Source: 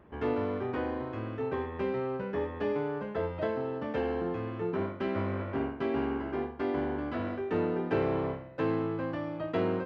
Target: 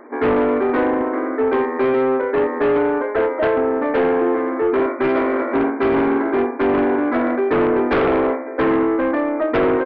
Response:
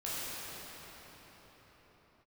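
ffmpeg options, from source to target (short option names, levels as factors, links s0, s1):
-af "aecho=1:1:554:0.0841,afftfilt=real='re*between(b*sr/4096,230,2400)':imag='im*between(b*sr/4096,230,2400)':win_size=4096:overlap=0.75,aeval=exprs='0.158*sin(PI/2*3.16*val(0)/0.158)':c=same,volume=1.5"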